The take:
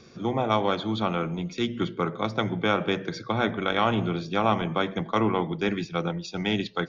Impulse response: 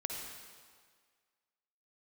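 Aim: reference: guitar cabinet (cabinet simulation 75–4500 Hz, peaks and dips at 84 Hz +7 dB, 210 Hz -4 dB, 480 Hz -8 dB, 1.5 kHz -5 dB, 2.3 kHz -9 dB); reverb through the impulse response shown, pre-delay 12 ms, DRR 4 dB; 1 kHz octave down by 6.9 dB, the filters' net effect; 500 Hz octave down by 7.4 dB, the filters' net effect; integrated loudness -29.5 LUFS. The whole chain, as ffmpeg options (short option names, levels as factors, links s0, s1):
-filter_complex "[0:a]equalizer=f=500:t=o:g=-4,equalizer=f=1000:t=o:g=-6,asplit=2[s0][s1];[1:a]atrim=start_sample=2205,adelay=12[s2];[s1][s2]afir=irnorm=-1:irlink=0,volume=0.531[s3];[s0][s3]amix=inputs=2:normalize=0,highpass=75,equalizer=f=84:t=q:w=4:g=7,equalizer=f=210:t=q:w=4:g=-4,equalizer=f=480:t=q:w=4:g=-8,equalizer=f=1500:t=q:w=4:g=-5,equalizer=f=2300:t=q:w=4:g=-9,lowpass=f=4500:w=0.5412,lowpass=f=4500:w=1.3066,volume=1.06"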